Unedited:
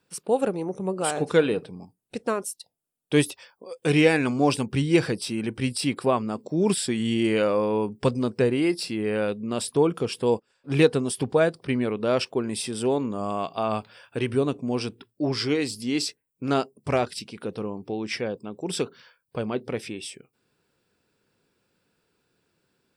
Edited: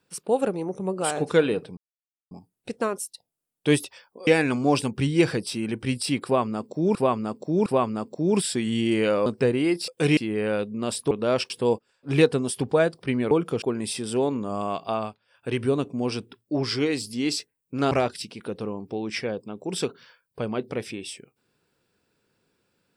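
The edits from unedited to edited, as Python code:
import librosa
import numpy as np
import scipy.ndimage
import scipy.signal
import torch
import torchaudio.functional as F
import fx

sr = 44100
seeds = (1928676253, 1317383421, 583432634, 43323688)

y = fx.edit(x, sr, fx.insert_silence(at_s=1.77, length_s=0.54),
    fx.move(start_s=3.73, length_s=0.29, to_s=8.86),
    fx.repeat(start_s=5.99, length_s=0.71, count=3),
    fx.cut(start_s=7.59, length_s=0.65),
    fx.swap(start_s=9.8, length_s=0.31, other_s=11.92, other_length_s=0.39),
    fx.fade_down_up(start_s=13.62, length_s=0.6, db=-20.0, fade_s=0.25),
    fx.cut(start_s=16.6, length_s=0.28), tone=tone)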